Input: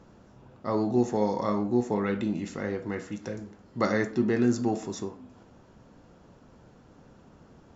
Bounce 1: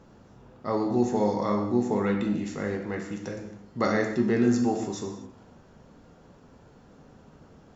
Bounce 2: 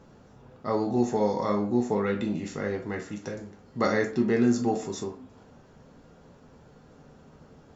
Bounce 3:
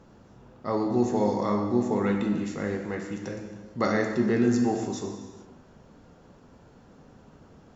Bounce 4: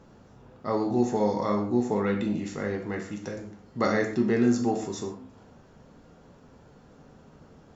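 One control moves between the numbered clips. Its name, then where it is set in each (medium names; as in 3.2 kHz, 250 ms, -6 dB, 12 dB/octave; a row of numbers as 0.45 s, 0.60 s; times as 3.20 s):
gated-style reverb, gate: 290 ms, 80 ms, 490 ms, 160 ms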